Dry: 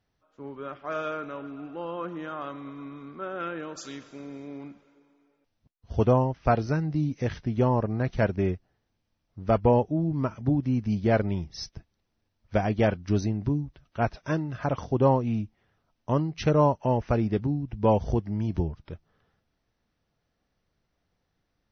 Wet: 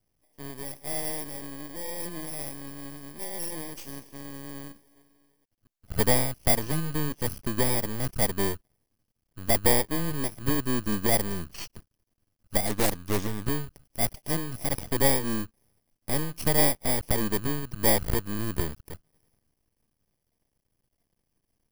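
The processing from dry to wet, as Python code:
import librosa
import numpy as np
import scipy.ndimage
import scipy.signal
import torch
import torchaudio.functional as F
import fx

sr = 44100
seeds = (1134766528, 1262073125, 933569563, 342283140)

y = fx.bit_reversed(x, sr, seeds[0], block=32)
y = np.maximum(y, 0.0)
y = fx.doppler_dist(y, sr, depth_ms=0.51, at=(12.66, 13.47))
y = y * 10.0 ** (3.5 / 20.0)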